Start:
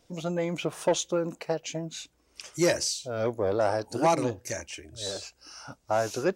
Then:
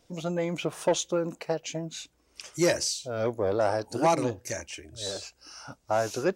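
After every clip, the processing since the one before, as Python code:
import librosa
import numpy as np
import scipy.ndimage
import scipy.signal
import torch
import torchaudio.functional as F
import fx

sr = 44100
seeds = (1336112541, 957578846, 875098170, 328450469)

y = x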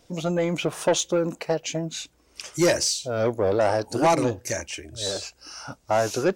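y = 10.0 ** (-18.5 / 20.0) * np.tanh(x / 10.0 ** (-18.5 / 20.0))
y = y * 10.0 ** (6.0 / 20.0)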